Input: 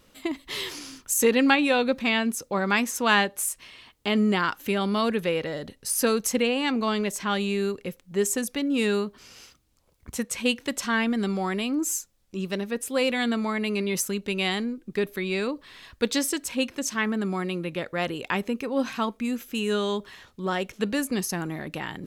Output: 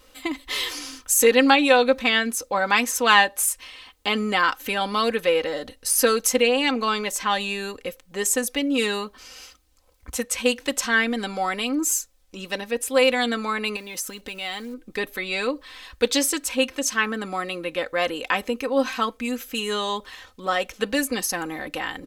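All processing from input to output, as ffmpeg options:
ffmpeg -i in.wav -filter_complex "[0:a]asettb=1/sr,asplit=3[link_01][link_02][link_03];[link_01]atrim=end=13.764[link_04];[link_02]atrim=start=13.76:end=14.74,asetpts=PTS-STARTPTS,afade=type=in:duration=0.004:curve=qsin,afade=type=out:start_time=0.976:duration=0.004:curve=qsin,acrusher=bits=7:mode=log:mix=0:aa=0.000001,acompressor=threshold=-31dB:ratio=5:attack=3.2:release=140:knee=1:detection=peak[link_05];[link_03]atrim=start=14.736[link_06];[link_04][link_05]acrossfade=duration=0.004:curve1=hsin:curve2=qsin[link_07];[link_07][link_06]acrossfade=duration=0.004:curve1=qsin:curve2=hsin,equalizer=frequency=190:width_type=o:width=1:gain=-13.5,aecho=1:1:3.9:0.65,volume=4dB" out.wav

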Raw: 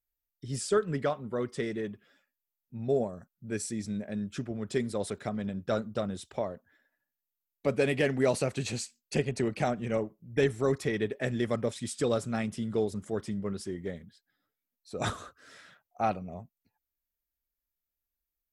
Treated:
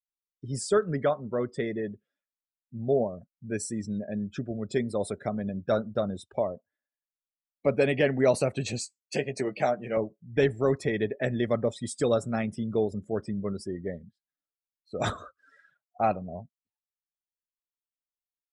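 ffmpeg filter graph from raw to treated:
ffmpeg -i in.wav -filter_complex "[0:a]asettb=1/sr,asplit=3[link_01][link_02][link_03];[link_01]atrim=end=8.794[link_04];[link_02]atrim=start=8.79:end=9.97,asetpts=PTS-STARTPTS,afade=type=in:duration=0.004:curve=qsin,afade=type=out:start_time=1.176:duration=0.004:curve=qsin,highpass=frequency=350:poles=1,asplit=2[link_05][link_06];[link_06]adelay=15,volume=-8dB[link_07];[link_05][link_07]amix=inputs=2:normalize=0,atrim=end_sample=52038[link_08];[link_03]atrim=start=9.966[link_09];[link_04][link_08]acrossfade=duration=0.004:curve1=hsin:curve2=qsin[link_10];[link_10][link_09]acrossfade=duration=0.004:curve1=qsin:curve2=hsin,afftdn=noise_reduction=25:noise_floor=-45,equalizer=frequency=610:width_type=o:width=0.4:gain=4,volume=2dB" out.wav

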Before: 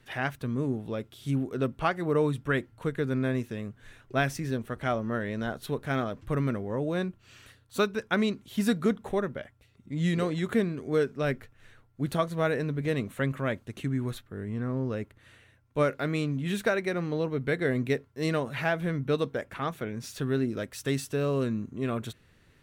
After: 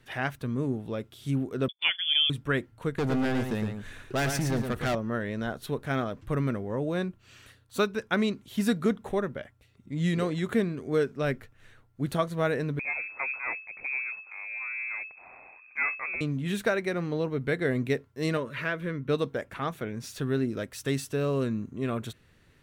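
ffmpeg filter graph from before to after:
ffmpeg -i in.wav -filter_complex "[0:a]asettb=1/sr,asplit=3[link_01][link_02][link_03];[link_01]atrim=end=1.684[link_04];[link_02]atrim=start=1.68:end=2.3,asetpts=PTS-STARTPTS,afade=type=in:duration=0.004:curve=qsin,afade=type=out:start_time=0.616:duration=0.004:curve=qsin,lowpass=frequency=3100:width_type=q:width=0.5098,lowpass=frequency=3100:width_type=q:width=0.6013,lowpass=frequency=3100:width_type=q:width=0.9,lowpass=frequency=3100:width_type=q:width=2.563,afreqshift=-3600,agate=range=-32dB:threshold=-38dB:ratio=16:release=100:detection=peak[link_05];[link_03]atrim=start=2.296[link_06];[link_04][link_05]acrossfade=duration=0.004:curve1=hsin:curve2=qsin[link_07];[link_07][link_06]acrossfade=duration=0.004:curve1=qsin:curve2=hsin,asettb=1/sr,asplit=3[link_08][link_09][link_10];[link_08]atrim=end=2.984[link_11];[link_09]atrim=start=2.98:end=4.95,asetpts=PTS-STARTPTS,afade=type=in:duration=0.004:curve=qsin,afade=type=out:start_time=1.966:duration=0.004:curve=qsin,asoftclip=type=hard:threshold=-31dB,acontrast=59,aecho=1:1:112:0.501,atrim=end_sample=86877[link_12];[link_10]atrim=start=4.946[link_13];[link_11][link_12]acrossfade=duration=0.004:curve1=hsin:curve2=qsin[link_14];[link_14][link_13]acrossfade=duration=0.004:curve1=qsin:curve2=hsin,asettb=1/sr,asplit=3[link_15][link_16][link_17];[link_15]atrim=end=12.794[link_18];[link_16]atrim=start=12.79:end=16.21,asetpts=PTS-STARTPTS,afade=type=in:duration=0.004:curve=qsin,afade=type=out:start_time=3.416:duration=0.004:curve=qsin,aeval=exprs='if(lt(val(0),0),0.251*val(0),val(0))':channel_layout=same,lowpass=frequency=2200:width_type=q:width=0.5098,lowpass=frequency=2200:width_type=q:width=0.6013,lowpass=frequency=2200:width_type=q:width=0.9,lowpass=frequency=2200:width_type=q:width=2.563,afreqshift=-2600,acompressor=mode=upward:threshold=-38dB:ratio=2.5:attack=3.2:release=140:knee=2.83:detection=peak[link_19];[link_17]atrim=start=16.206[link_20];[link_18][link_19]acrossfade=duration=0.004:curve1=hsin:curve2=qsin[link_21];[link_21][link_20]acrossfade=duration=0.004:curve1=qsin:curve2=hsin,asettb=1/sr,asplit=3[link_22][link_23][link_24];[link_22]atrim=end=18.374[link_25];[link_23]atrim=start=18.37:end=19.09,asetpts=PTS-STARTPTS,afade=type=in:duration=0.004:curve=qsin,afade=type=out:start_time=0.716:duration=0.004:curve=qsin,asuperstop=centerf=760:order=4:qfactor=2.4,bass=frequency=250:gain=-5,treble=frequency=4000:gain=-7[link_26];[link_24]atrim=start=19.086[link_27];[link_25][link_26]acrossfade=duration=0.004:curve1=hsin:curve2=qsin[link_28];[link_28][link_27]acrossfade=duration=0.004:curve1=qsin:curve2=hsin" out.wav

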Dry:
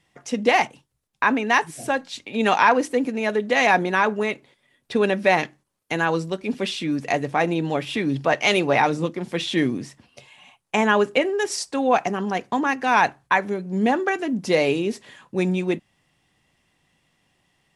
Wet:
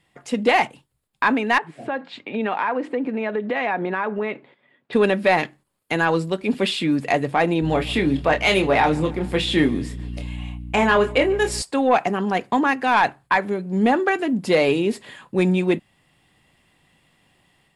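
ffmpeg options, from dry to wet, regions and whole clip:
ffmpeg -i in.wav -filter_complex "[0:a]asettb=1/sr,asplit=3[link_01][link_02][link_03];[link_01]atrim=end=1.584[link_04];[link_02]atrim=start=1.58:end=4.93,asetpts=PTS-STARTPTS,afade=type=in:duration=0.004:curve=qsin,afade=type=out:start_time=3.346:duration=0.004:curve=qsin,highpass=160,lowpass=2300,acompressor=threshold=-28dB:ratio=3:attack=3.2:release=140:knee=1:detection=peak[link_05];[link_03]atrim=start=4.926[link_06];[link_04][link_05]acrossfade=duration=0.004:curve1=hsin:curve2=qsin[link_07];[link_07][link_06]acrossfade=duration=0.004:curve1=qsin:curve2=hsin,asettb=1/sr,asplit=3[link_08][link_09][link_10];[link_08]atrim=end=7.624[link_11];[link_09]atrim=start=7.62:end=11.62,asetpts=PTS-STARTPTS,afade=type=in:duration=0.004:curve=qsin,afade=type=out:start_time=3.996:duration=0.004:curve=qsin,asplit=2[link_12][link_13];[link_13]adelay=26,volume=-7dB[link_14];[link_12][link_14]amix=inputs=2:normalize=0,atrim=end_sample=176400,aeval=exprs='val(0)+0.02*(sin(2*PI*60*n/s)+sin(2*PI*2*60*n/s)/2+sin(2*PI*3*60*n/s)/3+sin(2*PI*4*60*n/s)/4+sin(2*PI*5*60*n/s)/5)':channel_layout=same,aecho=1:1:144|288|432|576:0.0631|0.036|0.0205|0.0117,atrim=end_sample=176400[link_15];[link_10]atrim=start=11.616[link_16];[link_11][link_15]acrossfade=duration=0.004:curve1=hsin:curve2=qsin[link_17];[link_17][link_16]acrossfade=duration=0.004:curve1=qsin:curve2=hsin,acontrast=78,equalizer=frequency=5900:width_type=o:width=0.24:gain=-12,dynaudnorm=framelen=180:gausssize=3:maxgain=4.5dB,volume=-5.5dB" out.wav

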